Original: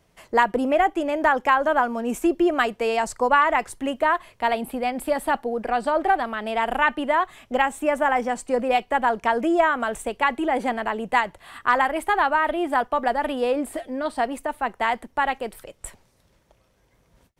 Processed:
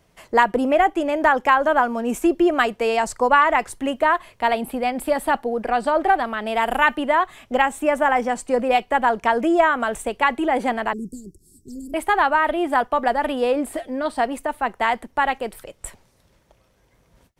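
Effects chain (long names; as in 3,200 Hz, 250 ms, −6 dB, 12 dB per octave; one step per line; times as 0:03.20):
0:06.50–0:06.96: high-shelf EQ 11,000 Hz → 5,800 Hz +11 dB
0:10.93–0:11.94: Chebyshev band-stop filter 390–5,200 Hz, order 5
level +2.5 dB
AAC 192 kbit/s 48,000 Hz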